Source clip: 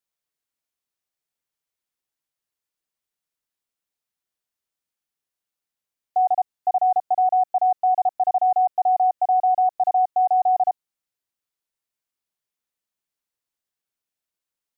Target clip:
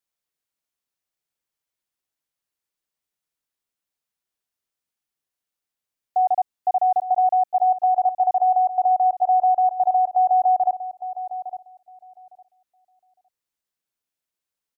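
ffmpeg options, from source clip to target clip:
-filter_complex "[0:a]asplit=2[a][b];[b]adelay=858,lowpass=f=870:p=1,volume=-10dB,asplit=2[c][d];[d]adelay=858,lowpass=f=870:p=1,volume=0.2,asplit=2[e][f];[f]adelay=858,lowpass=f=870:p=1,volume=0.2[g];[a][c][e][g]amix=inputs=4:normalize=0"

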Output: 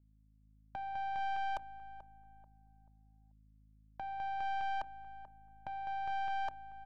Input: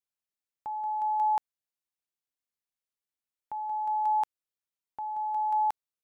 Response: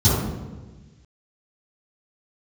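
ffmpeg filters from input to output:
-filter_complex "[0:a]bandreject=f=60:t=h:w=6,bandreject=f=120:t=h:w=6,bandreject=f=180:t=h:w=6,bandreject=f=240:t=h:w=6,bandreject=f=300:t=h:w=6,aecho=1:1:3:0.53,alimiter=level_in=6dB:limit=-24dB:level=0:latency=1,volume=-6dB,afreqshift=34,aeval=exprs='val(0)+0.000631*(sin(2*PI*60*n/s)+sin(2*PI*2*60*n/s)/2+sin(2*PI*3*60*n/s)/3+sin(2*PI*4*60*n/s)/4+sin(2*PI*5*60*n/s)/5)':c=same,asetrate=38808,aresample=44100,adynamicsmooth=sensitivity=7:basefreq=800,aeval=exprs='(tanh(50.1*val(0)+0.7)-tanh(0.7))/50.1':c=same,asplit=2[a][b];[b]adelay=436,lowpass=f=1.1k:p=1,volume=-12dB,asplit=2[c][d];[d]adelay=436,lowpass=f=1.1k:p=1,volume=0.36,asplit=2[e][f];[f]adelay=436,lowpass=f=1.1k:p=1,volume=0.36,asplit=2[g][h];[h]adelay=436,lowpass=f=1.1k:p=1,volume=0.36[i];[c][e][g][i]amix=inputs=4:normalize=0[j];[a][j]amix=inputs=2:normalize=0,volume=2.5dB"

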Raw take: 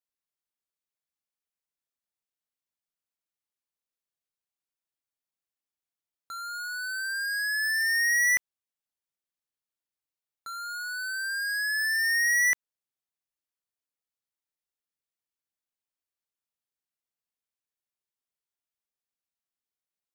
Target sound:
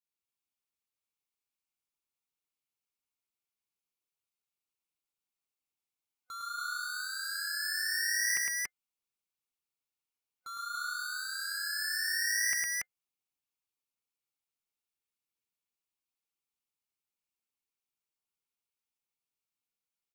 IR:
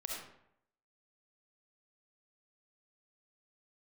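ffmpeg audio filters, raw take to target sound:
-filter_complex "[0:a]superequalizer=8b=0.447:11b=0.398:12b=1.41,asplit=2[a][b];[b]asetrate=37084,aresample=44100,atempo=1.18921,volume=-12dB[c];[a][c]amix=inputs=2:normalize=0,aecho=1:1:107.9|282.8:0.794|0.891,volume=-5dB"

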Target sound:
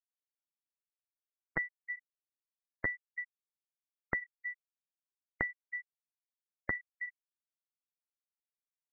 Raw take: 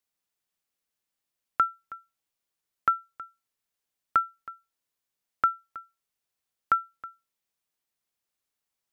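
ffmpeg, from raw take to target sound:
-af "equalizer=f=1.9k:w=0.65:g=-8.5,asetrate=64194,aresample=44100,atempo=0.686977,tiltshelf=f=1.3k:g=7.5,acompressor=threshold=-46dB:ratio=6,flanger=delay=7:depth=7.4:regen=-80:speed=0.33:shape=sinusoidal,afftfilt=real='re*gte(hypot(re,im),0.00631)':imag='im*gte(hypot(re,im),0.00631)':win_size=1024:overlap=0.75,volume=17.5dB"

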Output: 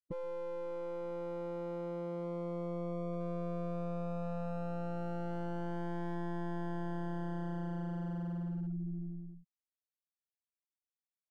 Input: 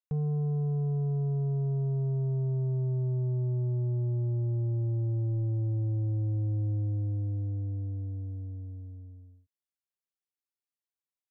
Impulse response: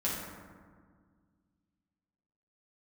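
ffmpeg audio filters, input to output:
-filter_complex "[0:a]afftfilt=real='hypot(re,im)*cos(PI*b)':imag='0':win_size=1024:overlap=0.75,equalizer=f=67:t=o:w=0.35:g=-4.5,areverse,acompressor=threshold=-50dB:ratio=4,areverse,aeval=exprs='0.0075*sin(PI/2*2.82*val(0)/0.0075)':c=same,afftfilt=real='re*gte(hypot(re,im),0.00355)':imag='im*gte(hypot(re,im),0.00355)':win_size=1024:overlap=0.75,acrossover=split=160|450[a][b][c];[c]aeval=exprs='max(val(0),0)':c=same[d];[a][b][d]amix=inputs=3:normalize=0,volume=9.5dB"

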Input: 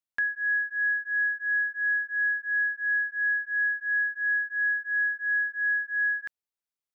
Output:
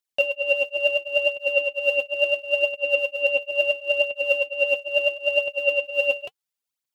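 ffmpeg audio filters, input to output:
-af "aphaser=in_gain=1:out_gain=1:delay=4:decay=0.63:speed=0.73:type=triangular,highpass=1.5k,aeval=exprs='val(0)*sin(2*PI*1100*n/s)':c=same,volume=7dB"

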